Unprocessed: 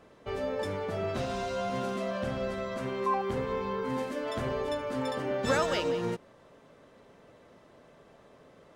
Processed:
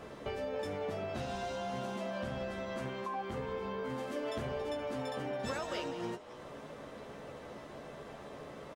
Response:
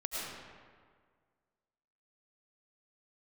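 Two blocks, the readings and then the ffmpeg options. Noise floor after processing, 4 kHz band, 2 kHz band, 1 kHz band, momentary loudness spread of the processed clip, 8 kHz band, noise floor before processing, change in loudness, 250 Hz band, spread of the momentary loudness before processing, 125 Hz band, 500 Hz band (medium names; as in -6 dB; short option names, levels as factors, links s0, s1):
-49 dBFS, -5.5 dB, -6.0 dB, -6.5 dB, 10 LU, -6.5 dB, -58 dBFS, -7.5 dB, -6.0 dB, 6 LU, -5.5 dB, -6.5 dB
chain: -filter_complex "[0:a]acompressor=threshold=0.00447:ratio=4,asplit=2[s0][s1];[s1]adelay=14,volume=0.473[s2];[s0][s2]amix=inputs=2:normalize=0,asplit=2[s3][s4];[s4]asplit=4[s5][s6][s7][s8];[s5]adelay=278,afreqshift=140,volume=0.2[s9];[s6]adelay=556,afreqshift=280,volume=0.0881[s10];[s7]adelay=834,afreqshift=420,volume=0.0385[s11];[s8]adelay=1112,afreqshift=560,volume=0.017[s12];[s9][s10][s11][s12]amix=inputs=4:normalize=0[s13];[s3][s13]amix=inputs=2:normalize=0,volume=2.51"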